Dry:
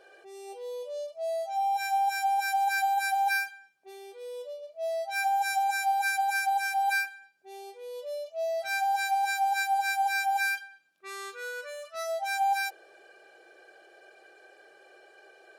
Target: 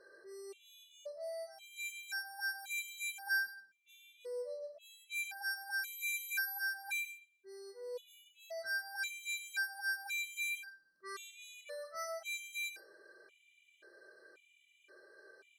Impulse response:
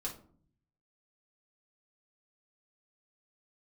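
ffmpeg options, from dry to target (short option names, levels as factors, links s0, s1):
-filter_complex "[0:a]asuperstop=centerf=750:order=4:qfactor=2.6,asettb=1/sr,asplit=3[s0][s1][s2];[s0]atrim=end=5.834[s3];[s1]atrim=start=5.83:end=6.59,asetpts=PTS-STARTPTS,afade=t=in:d=0.004:c=qsin,afade=t=out:st=0.756:d=0.004:c=qsin,aeval=exprs='val(0)+0.0158*sin(2*PI*12000*n/s)':c=same[s4];[s2]atrim=start=6.586[s5];[s3][s4]acrossfade=d=0.004:c1=hsin:c2=qsin[s6];[s6][s5]acrossfade=d=0.004:c1=qsin:c2=hsin,asplit=2[s7][s8];[1:a]atrim=start_sample=2205,adelay=101[s9];[s8][s9]afir=irnorm=-1:irlink=0,volume=0.299[s10];[s7][s10]amix=inputs=2:normalize=0,afftfilt=real='re*gt(sin(2*PI*0.94*pts/sr)*(1-2*mod(floor(b*sr/1024/2000),2)),0)':imag='im*gt(sin(2*PI*0.94*pts/sr)*(1-2*mod(floor(b*sr/1024/2000),2)),0)':win_size=1024:overlap=0.75,volume=0.668"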